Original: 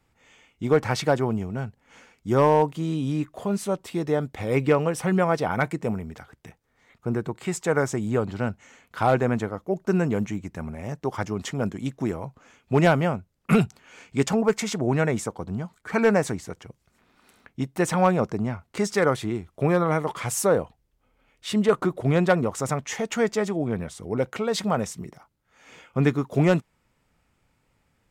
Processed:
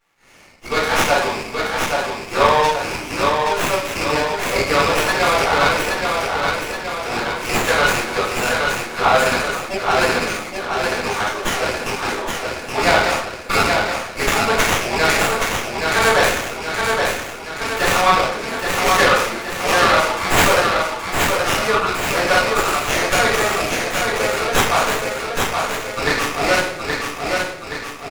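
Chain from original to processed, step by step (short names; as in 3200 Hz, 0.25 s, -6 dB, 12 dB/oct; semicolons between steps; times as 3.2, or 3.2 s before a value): rattling part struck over -26 dBFS, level -24 dBFS; high shelf 3300 Hz +11 dB; AGC gain up to 8 dB; HPF 1000 Hz 12 dB/oct; feedback echo 0.823 s, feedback 55%, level -4 dB; spectral gate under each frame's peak -20 dB strong; shoebox room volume 150 m³, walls mixed, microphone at 4.2 m; running maximum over 9 samples; gain -5.5 dB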